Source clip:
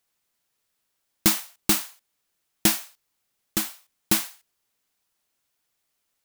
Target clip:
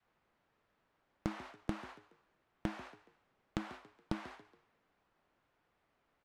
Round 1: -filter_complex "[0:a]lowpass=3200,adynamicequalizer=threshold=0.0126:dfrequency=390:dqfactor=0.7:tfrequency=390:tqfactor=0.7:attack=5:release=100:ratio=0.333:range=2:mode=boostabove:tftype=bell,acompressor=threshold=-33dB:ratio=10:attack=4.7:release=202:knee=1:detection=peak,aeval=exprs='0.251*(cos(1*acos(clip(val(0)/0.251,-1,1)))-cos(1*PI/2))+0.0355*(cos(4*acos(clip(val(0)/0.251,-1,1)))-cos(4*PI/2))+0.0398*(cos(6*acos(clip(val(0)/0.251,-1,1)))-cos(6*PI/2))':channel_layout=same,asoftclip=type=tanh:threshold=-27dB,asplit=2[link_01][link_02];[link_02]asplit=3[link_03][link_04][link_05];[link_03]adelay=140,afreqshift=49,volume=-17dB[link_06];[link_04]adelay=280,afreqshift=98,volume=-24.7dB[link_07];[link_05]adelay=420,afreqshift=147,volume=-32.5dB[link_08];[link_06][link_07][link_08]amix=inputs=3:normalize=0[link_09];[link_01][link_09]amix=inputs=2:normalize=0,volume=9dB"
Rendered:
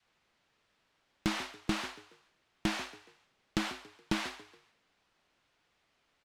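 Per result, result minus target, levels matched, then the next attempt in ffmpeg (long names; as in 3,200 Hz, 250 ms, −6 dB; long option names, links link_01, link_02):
4,000 Hz band +8.5 dB; downward compressor: peak gain reduction −8.5 dB
-filter_complex "[0:a]lowpass=1500,adynamicequalizer=threshold=0.0126:dfrequency=390:dqfactor=0.7:tfrequency=390:tqfactor=0.7:attack=5:release=100:ratio=0.333:range=2:mode=boostabove:tftype=bell,acompressor=threshold=-33dB:ratio=10:attack=4.7:release=202:knee=1:detection=peak,aeval=exprs='0.251*(cos(1*acos(clip(val(0)/0.251,-1,1)))-cos(1*PI/2))+0.0355*(cos(4*acos(clip(val(0)/0.251,-1,1)))-cos(4*PI/2))+0.0398*(cos(6*acos(clip(val(0)/0.251,-1,1)))-cos(6*PI/2))':channel_layout=same,asoftclip=type=tanh:threshold=-27dB,asplit=2[link_01][link_02];[link_02]asplit=3[link_03][link_04][link_05];[link_03]adelay=140,afreqshift=49,volume=-17dB[link_06];[link_04]adelay=280,afreqshift=98,volume=-24.7dB[link_07];[link_05]adelay=420,afreqshift=147,volume=-32.5dB[link_08];[link_06][link_07][link_08]amix=inputs=3:normalize=0[link_09];[link_01][link_09]amix=inputs=2:normalize=0,volume=9dB"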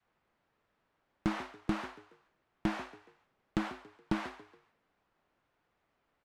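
downward compressor: peak gain reduction −9 dB
-filter_complex "[0:a]lowpass=1500,adynamicequalizer=threshold=0.0126:dfrequency=390:dqfactor=0.7:tfrequency=390:tqfactor=0.7:attack=5:release=100:ratio=0.333:range=2:mode=boostabove:tftype=bell,acompressor=threshold=-43dB:ratio=10:attack=4.7:release=202:knee=1:detection=peak,aeval=exprs='0.251*(cos(1*acos(clip(val(0)/0.251,-1,1)))-cos(1*PI/2))+0.0355*(cos(4*acos(clip(val(0)/0.251,-1,1)))-cos(4*PI/2))+0.0398*(cos(6*acos(clip(val(0)/0.251,-1,1)))-cos(6*PI/2))':channel_layout=same,asoftclip=type=tanh:threshold=-27dB,asplit=2[link_01][link_02];[link_02]asplit=3[link_03][link_04][link_05];[link_03]adelay=140,afreqshift=49,volume=-17dB[link_06];[link_04]adelay=280,afreqshift=98,volume=-24.7dB[link_07];[link_05]adelay=420,afreqshift=147,volume=-32.5dB[link_08];[link_06][link_07][link_08]amix=inputs=3:normalize=0[link_09];[link_01][link_09]amix=inputs=2:normalize=0,volume=9dB"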